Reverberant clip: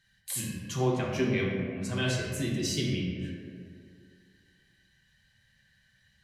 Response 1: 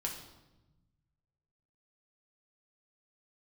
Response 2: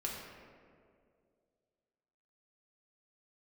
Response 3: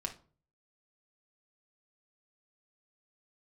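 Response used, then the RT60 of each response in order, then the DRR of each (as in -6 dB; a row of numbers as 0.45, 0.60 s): 2; 1.0, 2.2, 0.40 s; -0.5, -3.5, 1.0 dB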